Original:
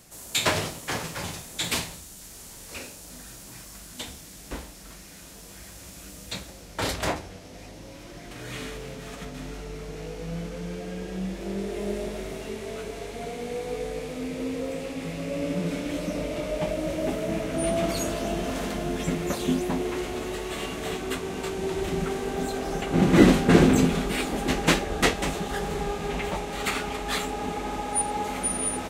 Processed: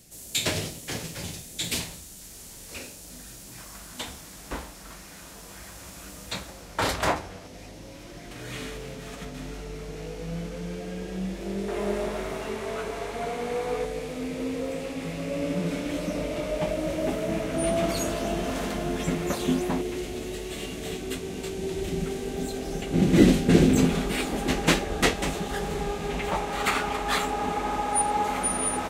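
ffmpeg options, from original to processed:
-af "asetnsamples=n=441:p=0,asendcmd='1.8 equalizer g -3.5;3.58 equalizer g 6;7.47 equalizer g -1;11.68 equalizer g 10;13.85 equalizer g 1;19.81 equalizer g -11;23.77 equalizer g -1.5;26.28 equalizer g 6',equalizer=f=1.1k:t=o:w=1.5:g=-11.5"

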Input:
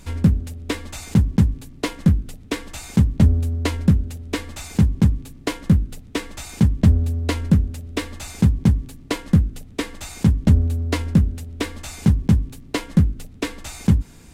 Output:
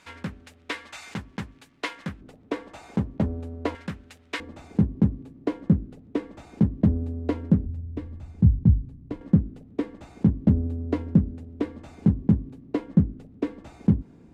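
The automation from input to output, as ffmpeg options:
-af "asetnsamples=n=441:p=0,asendcmd='2.21 bandpass f 600;3.75 bandpass f 1800;4.4 bandpass f 330;7.66 bandpass f 100;9.21 bandpass f 290',bandpass=f=1.7k:t=q:w=0.81:csg=0"

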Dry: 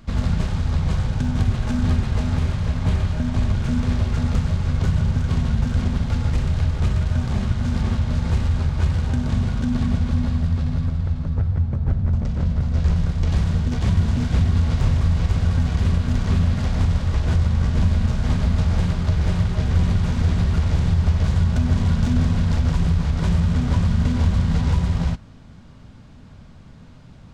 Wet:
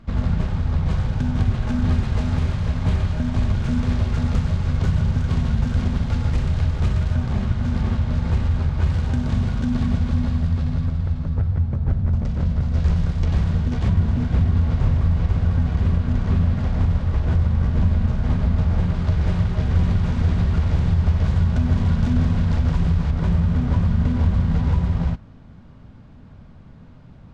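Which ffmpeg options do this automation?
-af "asetnsamples=n=441:p=0,asendcmd='0.86 lowpass f 3500;1.92 lowpass f 6100;7.15 lowpass f 3100;8.87 lowpass f 5900;13.25 lowpass f 3000;13.88 lowpass f 1600;18.94 lowpass f 2900;23.11 lowpass f 1700',lowpass=f=2.1k:p=1"

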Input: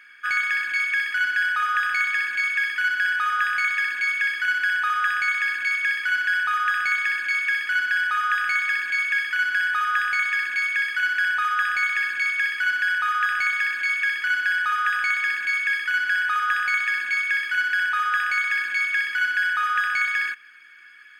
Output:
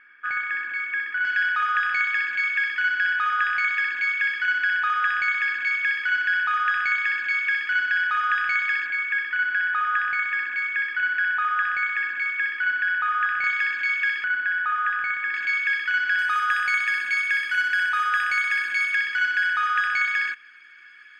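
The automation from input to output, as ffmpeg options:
-af "asetnsamples=n=441:p=0,asendcmd='1.25 lowpass f 3700;8.87 lowpass f 2200;13.44 lowpass f 3900;14.24 lowpass f 1800;15.34 lowpass f 4400;16.19 lowpass f 11000;18.95 lowpass f 6200',lowpass=1.7k"

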